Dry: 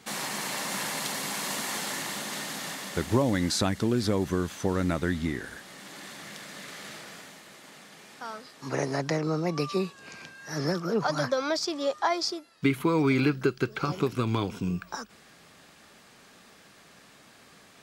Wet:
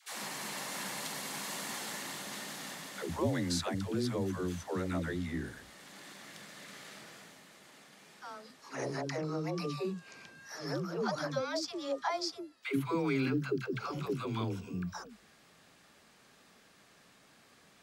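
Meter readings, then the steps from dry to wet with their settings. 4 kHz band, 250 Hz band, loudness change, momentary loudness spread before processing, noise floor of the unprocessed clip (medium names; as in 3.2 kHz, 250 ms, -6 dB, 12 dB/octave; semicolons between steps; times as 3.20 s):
-7.5 dB, -7.5 dB, -7.5 dB, 17 LU, -55 dBFS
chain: phase dispersion lows, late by 144 ms, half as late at 360 Hz; trim -7.5 dB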